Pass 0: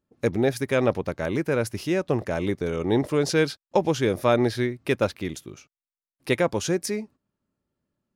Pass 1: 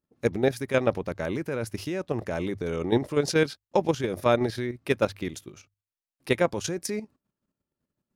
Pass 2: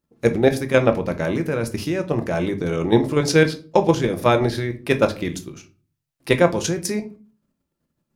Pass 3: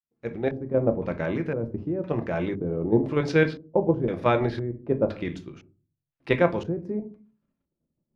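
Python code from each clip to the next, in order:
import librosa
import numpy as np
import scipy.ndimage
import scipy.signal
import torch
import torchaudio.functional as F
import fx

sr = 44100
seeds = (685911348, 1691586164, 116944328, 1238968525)

y1 = fx.hum_notches(x, sr, base_hz=50, count=2)
y1 = fx.level_steps(y1, sr, step_db=10)
y1 = y1 * 10.0 ** (1.0 / 20.0)
y2 = fx.room_shoebox(y1, sr, seeds[0], volume_m3=220.0, walls='furnished', distance_m=0.77)
y2 = y2 * 10.0 ** (6.0 / 20.0)
y3 = fx.fade_in_head(y2, sr, length_s=0.86)
y3 = fx.filter_lfo_lowpass(y3, sr, shape='square', hz=0.98, low_hz=570.0, high_hz=2700.0, q=0.87)
y3 = y3 * 10.0 ** (-5.0 / 20.0)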